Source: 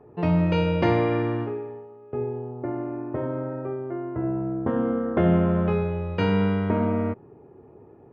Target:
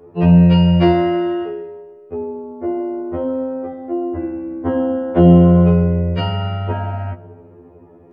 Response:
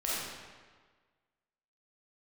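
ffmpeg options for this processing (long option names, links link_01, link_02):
-filter_complex "[0:a]bandreject=frequency=890:width=17,asplit=2[link_01][link_02];[1:a]atrim=start_sample=2205,highshelf=frequency=3000:gain=-6[link_03];[link_02][link_03]afir=irnorm=-1:irlink=0,volume=-22dB[link_04];[link_01][link_04]amix=inputs=2:normalize=0,afftfilt=real='re*2*eq(mod(b,4),0)':imag='im*2*eq(mod(b,4),0)':win_size=2048:overlap=0.75,volume=7.5dB"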